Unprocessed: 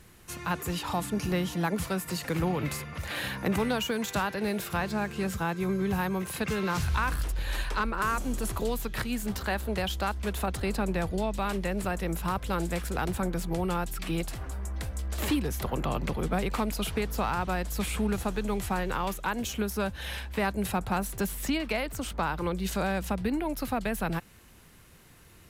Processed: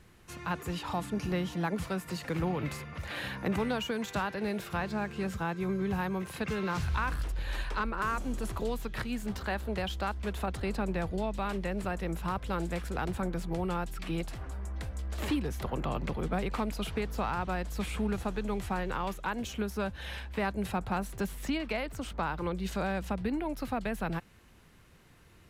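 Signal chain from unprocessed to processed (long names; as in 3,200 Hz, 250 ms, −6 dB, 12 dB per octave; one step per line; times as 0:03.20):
high-shelf EQ 7,000 Hz −11 dB
level −3 dB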